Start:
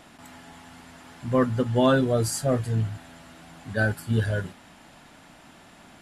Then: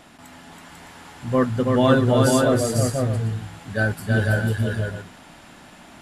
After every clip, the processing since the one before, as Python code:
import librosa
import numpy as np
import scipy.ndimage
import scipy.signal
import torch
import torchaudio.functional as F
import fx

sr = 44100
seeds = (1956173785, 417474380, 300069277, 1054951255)

y = fx.echo_multitap(x, sr, ms=(326, 495, 613), db=(-3.5, -3.0, -10.5))
y = F.gain(torch.from_numpy(y), 2.0).numpy()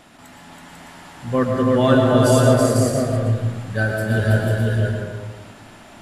y = fx.rev_freeverb(x, sr, rt60_s=1.3, hf_ratio=0.35, predelay_ms=80, drr_db=2.0)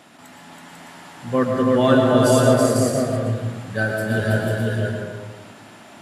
y = scipy.signal.sosfilt(scipy.signal.butter(2, 130.0, 'highpass', fs=sr, output='sos'), x)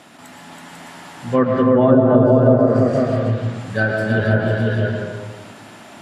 y = fx.env_lowpass_down(x, sr, base_hz=730.0, full_db=-11.0)
y = F.gain(torch.from_numpy(y), 3.5).numpy()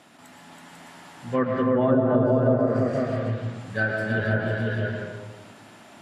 y = fx.dynamic_eq(x, sr, hz=1900.0, q=1.4, threshold_db=-38.0, ratio=4.0, max_db=5)
y = F.gain(torch.from_numpy(y), -8.0).numpy()